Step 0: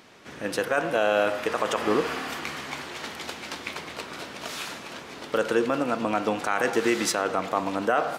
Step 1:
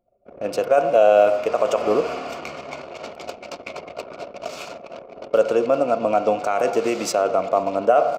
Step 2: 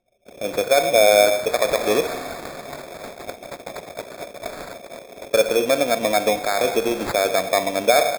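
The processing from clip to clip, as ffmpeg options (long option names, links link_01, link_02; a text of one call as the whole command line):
ffmpeg -i in.wav -af "superequalizer=7b=1.78:8b=3.55:11b=0.316:13b=0.562:16b=0.501,anlmdn=3.98" out.wav
ffmpeg -i in.wav -af "acrusher=samples=15:mix=1:aa=0.000001" out.wav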